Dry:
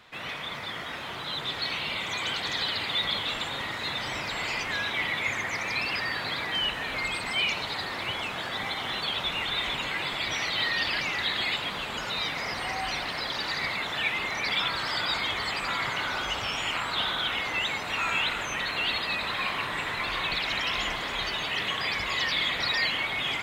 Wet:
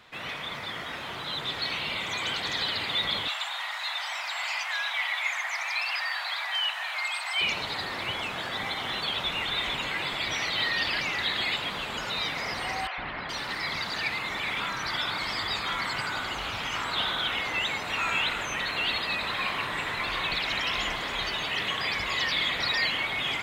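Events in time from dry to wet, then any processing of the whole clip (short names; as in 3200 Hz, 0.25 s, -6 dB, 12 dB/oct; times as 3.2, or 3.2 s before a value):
3.28–7.41 steep high-pass 670 Hz 48 dB/oct
12.87–16.84 three bands offset in time mids, lows, highs 0.11/0.42 s, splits 530/2900 Hz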